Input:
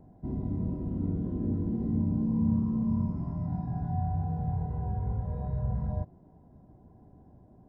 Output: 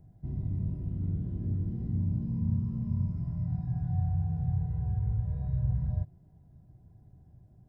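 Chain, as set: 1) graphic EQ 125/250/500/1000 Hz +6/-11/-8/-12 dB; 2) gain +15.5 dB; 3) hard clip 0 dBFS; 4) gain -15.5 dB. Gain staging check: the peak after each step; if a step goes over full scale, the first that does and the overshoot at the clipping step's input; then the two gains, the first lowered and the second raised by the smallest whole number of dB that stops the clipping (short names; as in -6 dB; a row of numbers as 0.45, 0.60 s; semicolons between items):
-18.5, -3.0, -3.0, -18.5 dBFS; no overload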